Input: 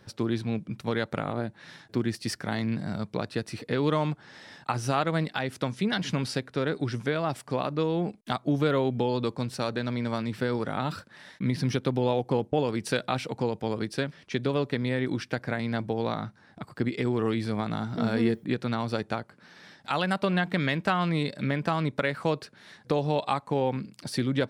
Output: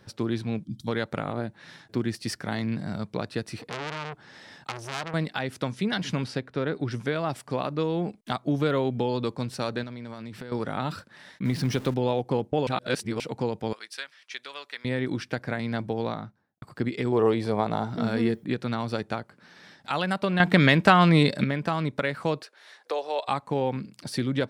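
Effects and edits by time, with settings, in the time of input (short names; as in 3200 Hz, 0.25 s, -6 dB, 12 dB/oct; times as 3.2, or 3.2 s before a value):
0.65–0.88 spectral gain 330–3100 Hz -22 dB
3.6–5.14 core saturation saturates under 3300 Hz
6.24–6.91 LPF 3100 Hz 6 dB/oct
9.83–10.52 compressor 10:1, threshold -34 dBFS
11.45–11.94 zero-crossing step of -37.5 dBFS
12.67–13.2 reverse
13.73–14.85 HPF 1400 Hz
15.98–16.62 studio fade out
17.12–17.9 band shelf 630 Hz +8.5 dB
20.4–21.44 gain +8.5 dB
22.42–23.28 HPF 450 Hz 24 dB/oct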